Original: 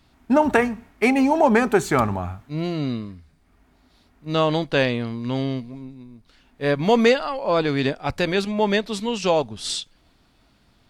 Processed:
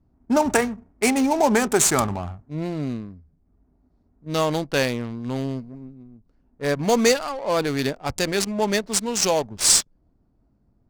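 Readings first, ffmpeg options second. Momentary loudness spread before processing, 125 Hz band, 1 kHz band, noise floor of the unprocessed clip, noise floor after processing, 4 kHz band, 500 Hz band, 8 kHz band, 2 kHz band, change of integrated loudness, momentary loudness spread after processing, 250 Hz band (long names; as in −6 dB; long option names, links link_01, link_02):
12 LU, −2.5 dB, −2.0 dB, −60 dBFS, −65 dBFS, +2.5 dB, −2.0 dB, +15.5 dB, −2.0 dB, 0.0 dB, 13 LU, −2.0 dB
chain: -af "aexciter=amount=10.2:drive=6.5:freq=5100,adynamicsmooth=sensitivity=3.5:basefreq=500,volume=-2dB"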